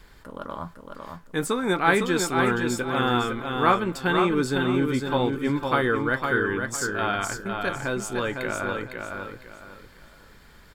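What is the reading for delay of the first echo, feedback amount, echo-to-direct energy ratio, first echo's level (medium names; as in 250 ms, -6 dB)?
506 ms, 29%, -4.5 dB, -5.0 dB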